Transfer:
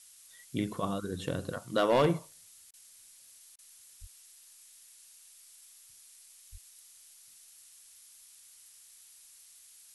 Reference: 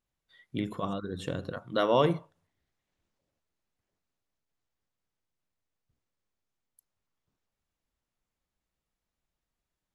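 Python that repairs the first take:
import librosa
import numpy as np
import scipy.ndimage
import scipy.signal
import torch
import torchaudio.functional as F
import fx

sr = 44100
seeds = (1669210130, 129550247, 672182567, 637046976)

y = fx.fix_declip(x, sr, threshold_db=-18.5)
y = fx.highpass(y, sr, hz=140.0, slope=24, at=(4.0, 4.12), fade=0.02)
y = fx.highpass(y, sr, hz=140.0, slope=24, at=(6.51, 6.63), fade=0.02)
y = fx.fix_interpolate(y, sr, at_s=(2.71, 3.56), length_ms=25.0)
y = fx.noise_reduce(y, sr, print_start_s=2.73, print_end_s=3.23, reduce_db=30.0)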